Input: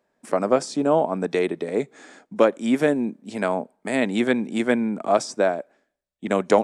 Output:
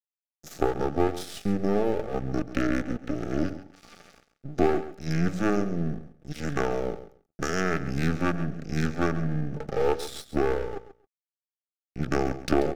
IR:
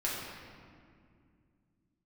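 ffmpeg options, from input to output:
-filter_complex "[0:a]aeval=exprs='if(lt(val(0),0),0.251*val(0),val(0))':c=same,highshelf=f=7.3k:g=9.5,bandreject=f=52.34:t=h:w=4,bandreject=f=104.68:t=h:w=4,bandreject=f=157.02:t=h:w=4,bandreject=f=209.36:t=h:w=4,bandreject=f=261.7:t=h:w=4,bandreject=f=314.04:t=h:w=4,bandreject=f=366.38:t=h:w=4,bandreject=f=418.72:t=h:w=4,bandreject=f=471.06:t=h:w=4,acompressor=threshold=-32dB:ratio=2,asetrate=22932,aresample=44100,highshelf=f=2.5k:g=-5.5,asetrate=58866,aresample=44100,atempo=0.749154,aeval=exprs='sgn(val(0))*max(abs(val(0))-0.00531,0)':c=same,asuperstop=centerf=1000:order=8:qfactor=4.5,asplit=2[a][b];[b]aecho=0:1:135|270:0.211|0.0338[c];[a][c]amix=inputs=2:normalize=0,volume=6.5dB"

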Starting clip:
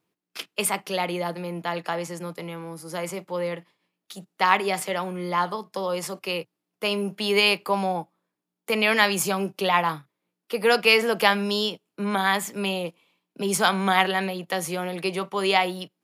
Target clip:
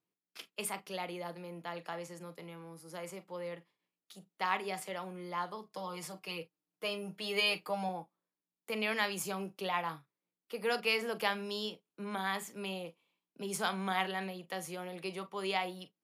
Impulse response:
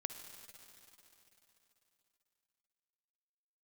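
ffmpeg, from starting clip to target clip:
-filter_complex "[0:a]asettb=1/sr,asplit=3[a][b][c];[a]atrim=end=5.704[d];[b]atrim=start=5.7:end=7.89,asetpts=PTS-STARTPTS,afade=t=in:d=0.004:c=qsin,afade=t=out:st=2.186:d=0.004:c=qsin,aecho=1:1:6.5:0.75,atrim=end_sample=96579[e];[c]atrim=start=7.886[f];[d][e]acrossfade=d=0.004:c1=hsin:c2=qsin[g];[g][f]acrossfade=d=0.004:c1=qsin:c2=hsin[h];[1:a]atrim=start_sample=2205,atrim=end_sample=3087,asetrate=66150,aresample=44100[i];[h][i]afir=irnorm=-1:irlink=0,volume=-7dB"

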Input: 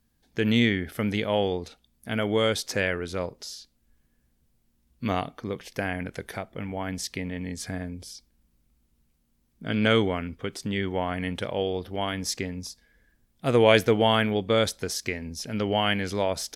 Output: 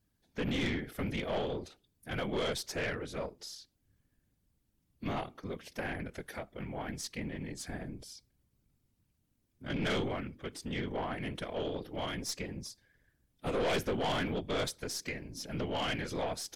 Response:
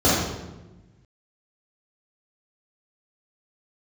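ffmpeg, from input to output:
-af "bandreject=f=123.2:t=h:w=4,bandreject=f=246.4:t=h:w=4,bandreject=f=369.6:t=h:w=4,afftfilt=real='hypot(re,im)*cos(2*PI*random(0))':imag='hypot(re,im)*sin(2*PI*random(1))':win_size=512:overlap=0.75,aeval=exprs='(tanh(25.1*val(0)+0.3)-tanh(0.3))/25.1':c=same"

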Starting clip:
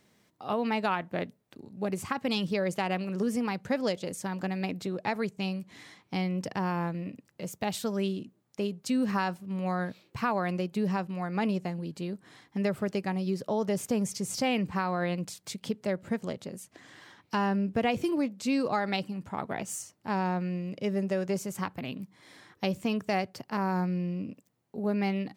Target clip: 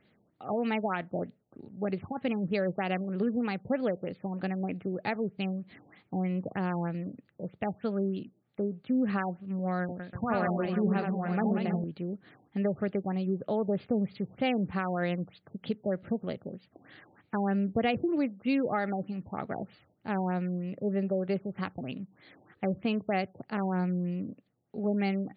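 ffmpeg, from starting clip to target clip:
-filter_complex "[0:a]equalizer=f=990:w=6.2:g=-11.5,asettb=1/sr,asplit=3[a][b][c];[a]atrim=end=9.814[d];[b]atrim=start=9.81:end=11.84,asetpts=PTS-STARTPTS,afade=t=in:d=0.004:c=qsin,afade=t=out:st=2.026:d=0.004:c=qsin,aecho=1:1:80|184|319.2|495|723.4:0.631|0.398|0.251|0.158|0.1,atrim=end_sample=89523[e];[c]atrim=start=11.836[f];[d][e]acrossfade=d=0.004:c1=hsin:c2=qsin[g];[g][f]acrossfade=d=0.004:c1=qsin:c2=hsin,afftfilt=real='re*lt(b*sr/1024,940*pow(4900/940,0.5+0.5*sin(2*PI*3.2*pts/sr)))':imag='im*lt(b*sr/1024,940*pow(4900/940,0.5+0.5*sin(2*PI*3.2*pts/sr)))':win_size=1024:overlap=0.75"

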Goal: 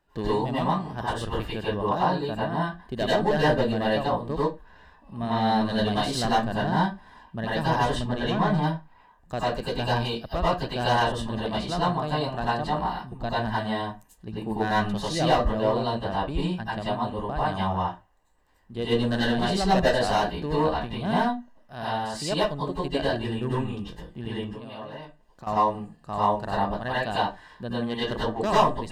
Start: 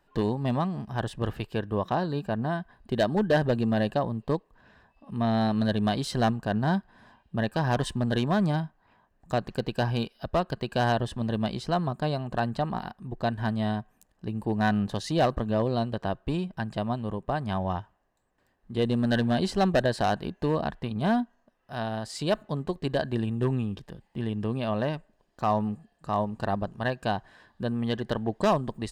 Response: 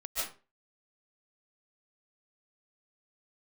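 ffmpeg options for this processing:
-filter_complex "[0:a]asettb=1/sr,asplit=3[a][b][c];[a]atrim=end=7.854[d];[b]atrim=start=7.85:end=8.54,asetpts=PTS-STARTPTS,afade=t=in:d=0.004:c=qsin,afade=t=out:st=0.686:d=0.004:c=qsin,lowpass=f=3.1k:p=1[e];[c]atrim=start=8.536[f];[d][e]acrossfade=d=0.004:c1=hsin:c2=qsin[g];[g][f]acrossfade=d=0.004:c1=qsin:c2=hsin,asettb=1/sr,asplit=3[h][i][j];[h]atrim=end=24.414[k];[i]atrim=start=24.41:end=25.47,asetpts=PTS-STARTPTS,afade=t=in:d=0.004:c=qsin,afade=t=out:st=1.056:d=0.004:c=qsin,acompressor=threshold=-38dB:ratio=5[l];[j]atrim=start=25.466[m];[k][l]acrossfade=d=0.004:c1=hsin:c2=qsin[n];[n][m]acrossfade=d=0.004:c1=qsin:c2=hsin[o];[1:a]atrim=start_sample=2205,asetrate=66150,aresample=44100[p];[o][p]afir=irnorm=-1:irlink=0,volume=4.5dB"

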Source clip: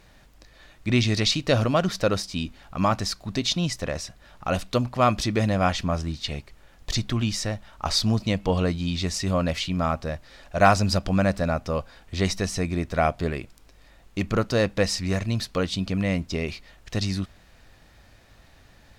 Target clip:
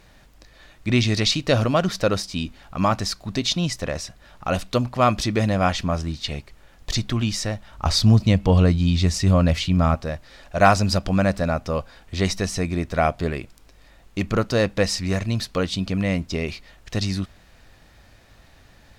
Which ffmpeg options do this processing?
-filter_complex "[0:a]asettb=1/sr,asplit=3[a][b][c];[a]atrim=end=7.704[d];[b]atrim=start=7.7:end=9.95,asetpts=PTS-STARTPTS,afade=t=in:d=0.004:c=qsin,afade=t=out:st=2.246:d=0.004:c=qsin,equalizer=f=76:w=0.46:g=9[e];[c]atrim=start=9.946[f];[d][e]acrossfade=d=0.004:c1=hsin:c2=qsin[g];[g][f]acrossfade=d=0.004:c1=qsin:c2=hsin,volume=2dB"

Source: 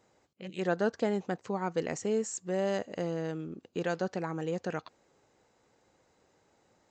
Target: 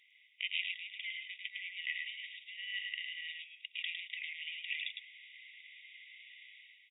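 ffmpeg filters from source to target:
-filter_complex "[0:a]areverse,acompressor=threshold=-38dB:ratio=16,areverse,alimiter=level_in=13.5dB:limit=-24dB:level=0:latency=1:release=18,volume=-13.5dB,dynaudnorm=f=100:g=9:m=11dB,asoftclip=type=tanh:threshold=-29dB,aresample=8000,aresample=44100,asplit=2[a][b];[b]aecho=0:1:106:0.631[c];[a][c]amix=inputs=2:normalize=0,afftfilt=real='re*eq(mod(floor(b*sr/1024/1900),2),1)':imag='im*eq(mod(floor(b*sr/1024/1900),2),1)':win_size=1024:overlap=0.75,volume=14.5dB"

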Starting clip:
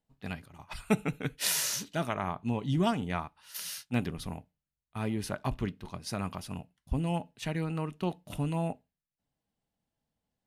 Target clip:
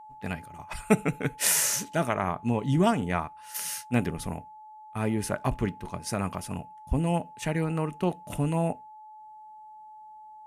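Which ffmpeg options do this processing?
-af "equalizer=f=500:t=o:w=1:g=3,equalizer=f=2k:t=o:w=1:g=3,equalizer=f=4k:t=o:w=1:g=-8,equalizer=f=8k:t=o:w=1:g=6,aeval=exprs='val(0)+0.00355*sin(2*PI*860*n/s)':c=same,volume=4dB"

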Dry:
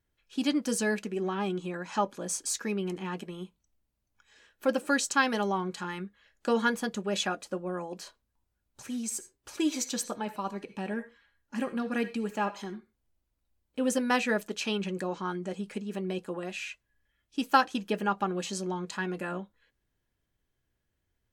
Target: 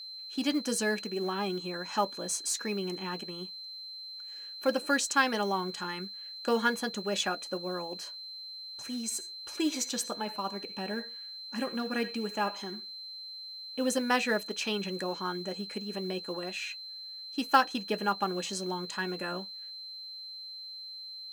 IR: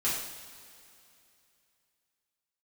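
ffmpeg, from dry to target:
-af "aeval=exprs='val(0)+0.00891*sin(2*PI*4100*n/s)':c=same,lowshelf=f=180:g=-7.5,acrusher=bits=7:mode=log:mix=0:aa=0.000001"

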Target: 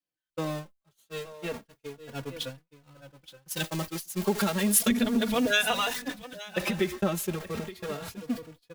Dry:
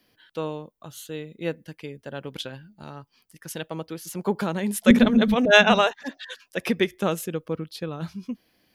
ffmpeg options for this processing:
-filter_complex "[0:a]aeval=exprs='val(0)+0.5*0.0398*sgn(val(0))':c=same,agate=range=-59dB:threshold=-28dB:ratio=16:detection=peak,acompressor=threshold=-21dB:ratio=6,asettb=1/sr,asplit=3[a][b][c];[a]atrim=end=3.484[d];[b]atrim=start=3.48:end=6.02,asetpts=PTS-STARTPTS,afade=t=in:d=0.004:c=qsin,afade=t=out:st=2.536:d=0.004:c=qsin,highshelf=f=3k:g=10.5[e];[c]atrim=start=6.016[f];[d][e]acrossfade=d=0.004:c1=hsin:c2=qsin[g];[g][f]acrossfade=d=0.004:c1=qsin:c2=hsin,aecho=1:1:873:0.188,asplit=2[h][i];[i]adelay=3.5,afreqshift=0.32[j];[h][j]amix=inputs=2:normalize=1"

